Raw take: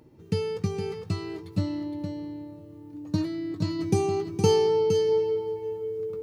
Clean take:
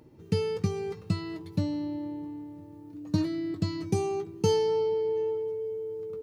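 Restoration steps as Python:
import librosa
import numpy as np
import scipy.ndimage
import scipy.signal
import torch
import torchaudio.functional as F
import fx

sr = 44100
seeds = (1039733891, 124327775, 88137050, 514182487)

y = fx.fix_echo_inverse(x, sr, delay_ms=464, level_db=-7.0)
y = fx.gain(y, sr, db=fx.steps((0.0, 0.0), (3.79, -3.5)))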